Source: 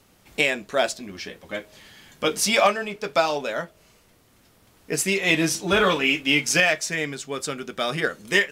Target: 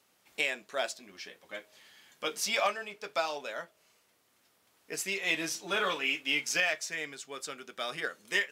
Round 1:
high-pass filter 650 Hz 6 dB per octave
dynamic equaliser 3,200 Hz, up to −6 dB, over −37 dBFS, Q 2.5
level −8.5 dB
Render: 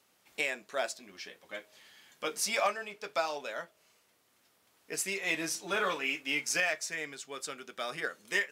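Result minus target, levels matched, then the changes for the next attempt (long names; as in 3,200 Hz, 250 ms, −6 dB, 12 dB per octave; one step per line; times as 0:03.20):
4,000 Hz band −2.5 dB
change: dynamic equaliser 9,300 Hz, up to −6 dB, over −37 dBFS, Q 2.5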